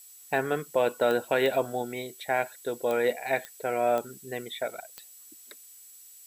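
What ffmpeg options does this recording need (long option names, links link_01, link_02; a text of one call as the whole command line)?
ffmpeg -i in.wav -af "adeclick=threshold=4,bandreject=frequency=7800:width=30,afftdn=noise_reduction=22:noise_floor=-51" out.wav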